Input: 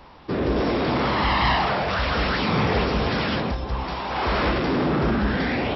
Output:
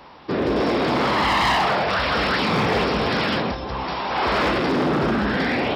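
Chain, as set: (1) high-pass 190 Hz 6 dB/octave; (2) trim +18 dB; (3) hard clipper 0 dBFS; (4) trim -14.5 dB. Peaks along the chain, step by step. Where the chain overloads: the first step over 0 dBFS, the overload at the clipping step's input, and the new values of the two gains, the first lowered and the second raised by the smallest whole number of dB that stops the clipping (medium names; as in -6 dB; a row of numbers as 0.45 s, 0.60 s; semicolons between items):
-10.0 dBFS, +8.0 dBFS, 0.0 dBFS, -14.5 dBFS; step 2, 8.0 dB; step 2 +10 dB, step 4 -6.5 dB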